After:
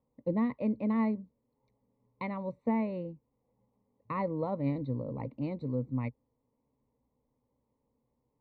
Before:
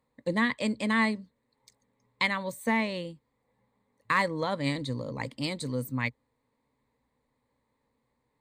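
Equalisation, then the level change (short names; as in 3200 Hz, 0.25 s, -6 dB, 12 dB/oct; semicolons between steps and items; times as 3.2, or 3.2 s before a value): running mean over 27 samples; air absorption 230 m; 0.0 dB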